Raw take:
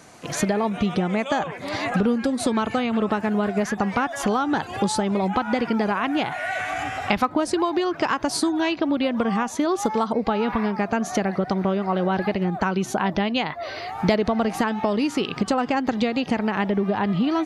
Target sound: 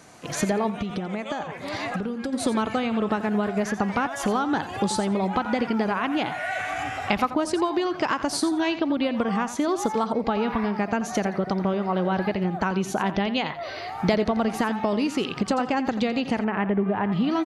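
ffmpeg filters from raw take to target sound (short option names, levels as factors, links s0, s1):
-filter_complex "[0:a]aecho=1:1:86|172:0.237|0.0379,asplit=3[s0][s1][s2];[s0]afade=t=out:st=0.7:d=0.02[s3];[s1]acompressor=threshold=0.0631:ratio=6,afade=t=in:st=0.7:d=0.02,afade=t=out:st=2.32:d=0.02[s4];[s2]afade=t=in:st=2.32:d=0.02[s5];[s3][s4][s5]amix=inputs=3:normalize=0,asettb=1/sr,asplit=3[s6][s7][s8];[s6]atrim=end=16.444[s9];[s7]atrim=start=16.44:end=17.12,asetpts=PTS-STARTPTS,afade=t=in:d=0.004:c=qsin,afade=t=out:st=0.676:d=0.004:c=qsin,lowpass=f=2600:w=0.5412,lowpass=f=2600:w=1.3066[s10];[s8]atrim=start=17.116[s11];[s9][s10]acrossfade=d=0.004:c1=hsin:c2=qsin[s12];[s12][s11]acrossfade=d=0.004:c1=qsin:c2=hsin,volume=0.794"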